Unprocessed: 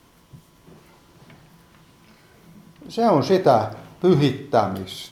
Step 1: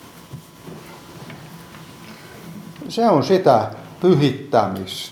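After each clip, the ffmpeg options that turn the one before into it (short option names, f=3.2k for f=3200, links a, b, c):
-filter_complex "[0:a]agate=range=-33dB:threshold=-49dB:ratio=3:detection=peak,highpass=92,asplit=2[a][b];[b]acompressor=mode=upward:threshold=-19dB:ratio=2.5,volume=-1.5dB[c];[a][c]amix=inputs=2:normalize=0,volume=-3dB"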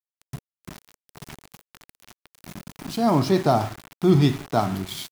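-af "bass=f=250:g=6,treble=f=4k:g=2,aeval=exprs='val(0)*gte(abs(val(0)),0.0422)':c=same,equalizer=f=510:t=o:w=0.29:g=-14,volume=-4.5dB"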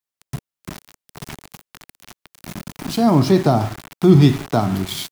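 -filter_complex "[0:a]acrossover=split=360[a][b];[b]acompressor=threshold=-29dB:ratio=2[c];[a][c]amix=inputs=2:normalize=0,volume=7dB"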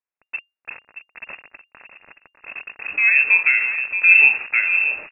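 -filter_complex "[0:a]asplit=2[a][b];[b]adelay=625,lowpass=f=1.8k:p=1,volume=-9dB,asplit=2[c][d];[d]adelay=625,lowpass=f=1.8k:p=1,volume=0.26,asplit=2[e][f];[f]adelay=625,lowpass=f=1.8k:p=1,volume=0.26[g];[c][e][g]amix=inputs=3:normalize=0[h];[a][h]amix=inputs=2:normalize=0,lowpass=f=2.4k:t=q:w=0.5098,lowpass=f=2.4k:t=q:w=0.6013,lowpass=f=2.4k:t=q:w=0.9,lowpass=f=2.4k:t=q:w=2.563,afreqshift=-2800,volume=-1.5dB"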